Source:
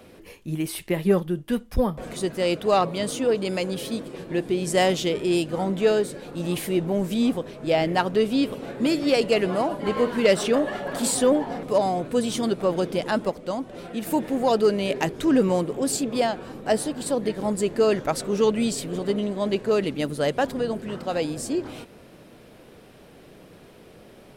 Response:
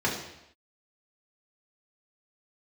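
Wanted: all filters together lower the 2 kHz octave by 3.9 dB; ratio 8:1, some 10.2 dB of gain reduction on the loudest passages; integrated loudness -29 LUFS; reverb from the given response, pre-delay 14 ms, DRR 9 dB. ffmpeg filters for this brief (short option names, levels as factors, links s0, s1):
-filter_complex "[0:a]equalizer=f=2000:t=o:g=-5,acompressor=threshold=0.0562:ratio=8,asplit=2[s0][s1];[1:a]atrim=start_sample=2205,adelay=14[s2];[s1][s2]afir=irnorm=-1:irlink=0,volume=0.0891[s3];[s0][s3]amix=inputs=2:normalize=0,volume=1.06"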